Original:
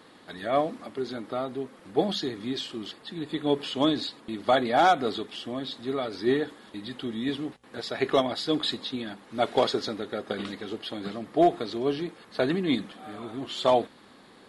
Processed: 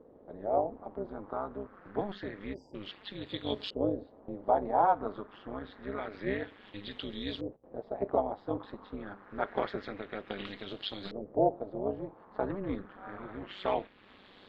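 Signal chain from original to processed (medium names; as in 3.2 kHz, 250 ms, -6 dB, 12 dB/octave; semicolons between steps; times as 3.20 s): AM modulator 200 Hz, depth 80%; in parallel at +0.5 dB: compression, threshold -40 dBFS, peak gain reduction 20.5 dB; on the sum: LFO low-pass saw up 0.27 Hz 490–4300 Hz; spectral selection erased 2.54–2.75 s, 1–4.7 kHz; trim -7.5 dB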